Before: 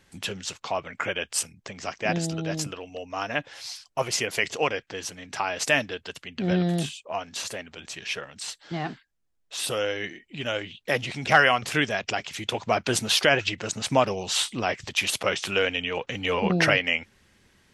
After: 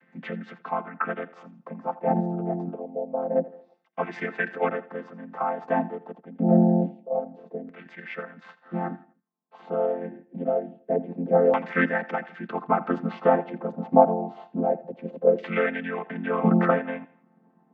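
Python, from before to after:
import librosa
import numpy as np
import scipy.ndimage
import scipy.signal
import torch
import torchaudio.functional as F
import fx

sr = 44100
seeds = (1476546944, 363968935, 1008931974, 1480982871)

y = fx.chord_vocoder(x, sr, chord='major triad', root=53)
y = fx.filter_lfo_lowpass(y, sr, shape='saw_down', hz=0.26, low_hz=470.0, high_hz=2000.0, q=3.1)
y = fx.echo_feedback(y, sr, ms=83, feedback_pct=37, wet_db=-18.0)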